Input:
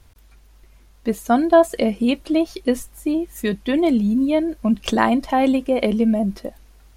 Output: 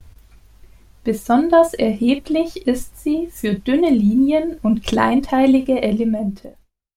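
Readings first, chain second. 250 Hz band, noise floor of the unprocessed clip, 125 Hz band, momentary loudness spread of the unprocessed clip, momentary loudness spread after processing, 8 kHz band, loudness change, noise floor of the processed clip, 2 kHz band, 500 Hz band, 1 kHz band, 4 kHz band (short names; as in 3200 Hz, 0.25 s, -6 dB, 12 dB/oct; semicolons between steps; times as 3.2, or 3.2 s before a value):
+2.5 dB, -51 dBFS, +3.0 dB, 10 LU, 9 LU, +0.5 dB, +2.0 dB, -56 dBFS, +0.5 dB, +1.5 dB, +1.0 dB, +0.5 dB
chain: ending faded out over 1.28 s; low shelf 170 Hz +8.5 dB; early reflections 11 ms -9 dB, 50 ms -11.5 dB; gate with hold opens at -42 dBFS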